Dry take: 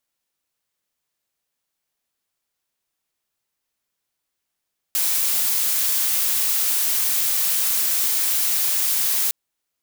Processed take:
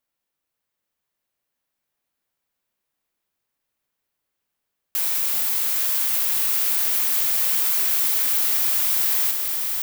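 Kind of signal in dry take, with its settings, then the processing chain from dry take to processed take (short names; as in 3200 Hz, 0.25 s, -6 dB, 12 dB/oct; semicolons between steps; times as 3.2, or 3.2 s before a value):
noise blue, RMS -20.5 dBFS 4.36 s
bell 6800 Hz -6.5 dB 2.3 oct; swelling echo 0.197 s, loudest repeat 5, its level -12 dB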